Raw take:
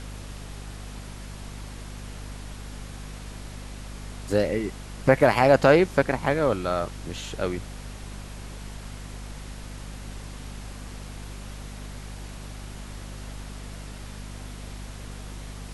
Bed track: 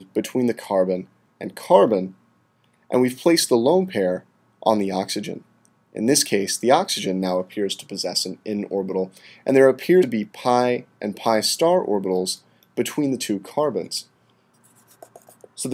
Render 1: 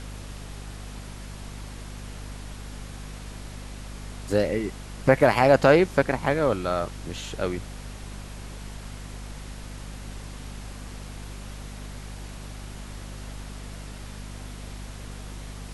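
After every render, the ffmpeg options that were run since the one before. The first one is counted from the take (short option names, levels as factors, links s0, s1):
-af anull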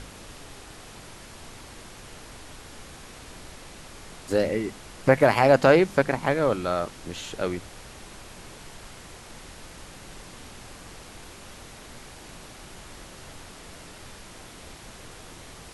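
-af "bandreject=f=50:t=h:w=6,bandreject=f=100:t=h:w=6,bandreject=f=150:t=h:w=6,bandreject=f=200:t=h:w=6,bandreject=f=250:t=h:w=6"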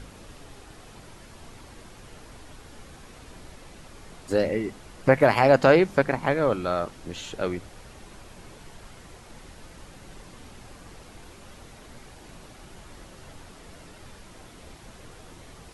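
-af "afftdn=nr=6:nf=-45"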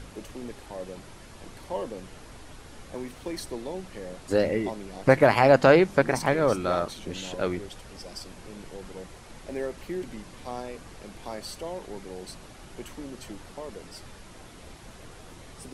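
-filter_complex "[1:a]volume=0.119[s0];[0:a][s0]amix=inputs=2:normalize=0"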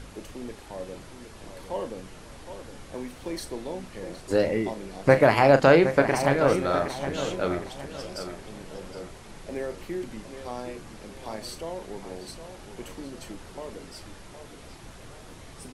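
-filter_complex "[0:a]asplit=2[s0][s1];[s1]adelay=36,volume=0.282[s2];[s0][s2]amix=inputs=2:normalize=0,asplit=2[s3][s4];[s4]adelay=765,lowpass=f=4400:p=1,volume=0.316,asplit=2[s5][s6];[s6]adelay=765,lowpass=f=4400:p=1,volume=0.38,asplit=2[s7][s8];[s8]adelay=765,lowpass=f=4400:p=1,volume=0.38,asplit=2[s9][s10];[s10]adelay=765,lowpass=f=4400:p=1,volume=0.38[s11];[s5][s7][s9][s11]amix=inputs=4:normalize=0[s12];[s3][s12]amix=inputs=2:normalize=0"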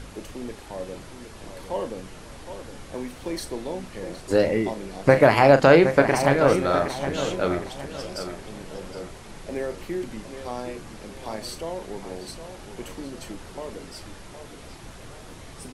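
-af "volume=1.41,alimiter=limit=0.708:level=0:latency=1"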